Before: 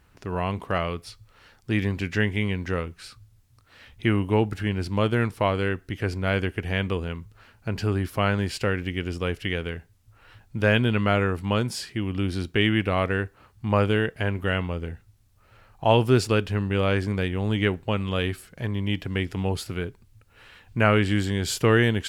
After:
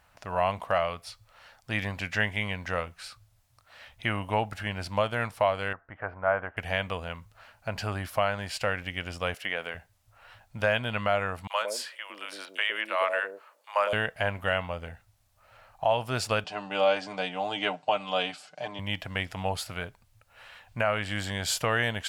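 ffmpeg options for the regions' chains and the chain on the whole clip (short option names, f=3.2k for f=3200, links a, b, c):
-filter_complex "[0:a]asettb=1/sr,asplit=3[a][b][c];[a]atrim=end=5.734[d];[b]atrim=start=5.73:end=6.57,asetpts=PTS-STARTPTS,afade=t=in:d=0.004:c=qsin,afade=t=out:st=0.836:d=0.004:c=qsin,lowpass=f=1.3k:w=0.5412,lowpass=f=1.3k:w=1.3066,tiltshelf=f=690:g=-8.5[e];[c]atrim=start=6.566[f];[d][e]acrossfade=d=0.004:c1=hsin:c2=qsin[g];[g][f]acrossfade=d=0.004:c1=qsin:c2=hsin,asettb=1/sr,asplit=3[h][i][j];[h]atrim=end=9.344[k];[i]atrim=start=9.34:end=9.75,asetpts=PTS-STARTPTS,afade=t=in:d=0.004:c=qsin,afade=t=out:st=0.406:d=0.004:c=qsin,acrossover=split=2800[l][m];[m]acompressor=threshold=-47dB:ratio=4:attack=1:release=60[n];[l][n]amix=inputs=2:normalize=0,highpass=240,highshelf=f=5.1k:g=6.5[o];[j]atrim=start=9.746[p];[k][o]acrossfade=d=0.004:c1=hsin:c2=qsin[q];[q][p]acrossfade=d=0.004:c1=qsin:c2=hsin,asettb=1/sr,asplit=3[r][s][t];[r]atrim=end=11.474[u];[s]atrim=start=11.47:end=13.93,asetpts=PTS-STARTPTS,afade=t=in:d=0.004:c=qsin,afade=t=out:st=2.456:d=0.004:c=qsin,highpass=f=390:w=0.5412,highpass=f=390:w=1.3066,bandreject=f=750:w=5.7,acrossover=split=570|4000[v][w][x];[w]adelay=30[y];[v]adelay=140[z];[z][y][x]amix=inputs=3:normalize=0,atrim=end_sample=108486[aa];[t]atrim=start=13.926[ab];[u][aa]acrossfade=d=0.004:c1=hsin:c2=qsin[ac];[ac][ab]acrossfade=d=0.004:c1=qsin:c2=hsin,asettb=1/sr,asplit=3[ad][ae][af];[ad]atrim=end=16.444[ag];[ae]atrim=start=16.44:end=18.79,asetpts=PTS-STARTPTS,afade=t=in:d=0.004:c=qsin,afade=t=out:st=2.346:d=0.004:c=qsin,highpass=f=180:w=0.5412,highpass=f=180:w=1.3066,equalizer=f=220:t=q:w=4:g=-4,equalizer=f=480:t=q:w=4:g=-3,equalizer=f=760:t=q:w=4:g=5,equalizer=f=1.2k:t=q:w=4:g=-3,equalizer=f=1.8k:t=q:w=4:g=-9,equalizer=f=4.8k:t=q:w=4:g=4,lowpass=f=7.6k:w=0.5412,lowpass=f=7.6k:w=1.3066,bandreject=f=2.2k:w=21,aecho=1:1:6.7:0.7,atrim=end_sample=103635[ah];[af]atrim=start=18.786[ai];[ag][ah]acrossfade=d=0.004:c1=hsin:c2=qsin[aj];[aj][ai]acrossfade=d=0.004:c1=qsin:c2=hsin,lowshelf=f=490:t=q:w=3:g=-8,alimiter=limit=-13dB:level=0:latency=1:release=441"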